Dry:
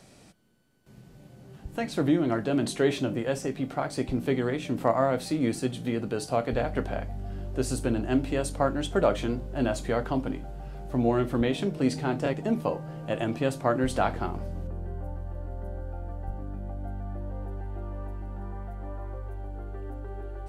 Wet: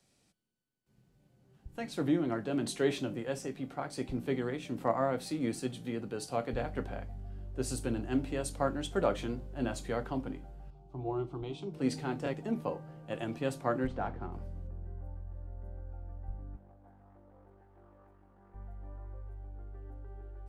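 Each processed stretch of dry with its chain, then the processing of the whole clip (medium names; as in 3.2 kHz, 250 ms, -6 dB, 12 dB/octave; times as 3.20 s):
10.70–11.74 s: distance through air 97 m + static phaser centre 350 Hz, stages 8
13.87–14.32 s: CVSD coder 64 kbps + tape spacing loss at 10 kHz 29 dB
16.56–18.54 s: high-pass 270 Hz 6 dB/octave + AM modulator 46 Hz, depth 20% + loudspeaker Doppler distortion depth 0.36 ms
whole clip: band-stop 630 Hz, Q 13; three bands expanded up and down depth 40%; trim -7 dB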